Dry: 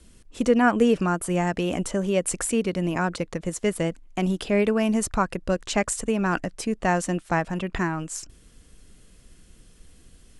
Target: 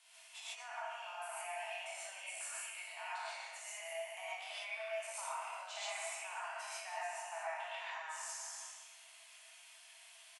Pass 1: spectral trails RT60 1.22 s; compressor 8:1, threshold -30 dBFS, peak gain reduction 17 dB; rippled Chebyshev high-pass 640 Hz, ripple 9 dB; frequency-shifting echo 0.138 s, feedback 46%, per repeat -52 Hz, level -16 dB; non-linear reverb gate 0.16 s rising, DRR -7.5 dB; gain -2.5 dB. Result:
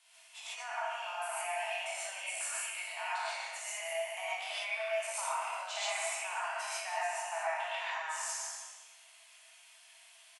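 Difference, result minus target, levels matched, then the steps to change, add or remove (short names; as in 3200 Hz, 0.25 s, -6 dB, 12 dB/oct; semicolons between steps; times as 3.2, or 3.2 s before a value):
compressor: peak gain reduction -7 dB
change: compressor 8:1, threshold -38 dBFS, peak gain reduction 24 dB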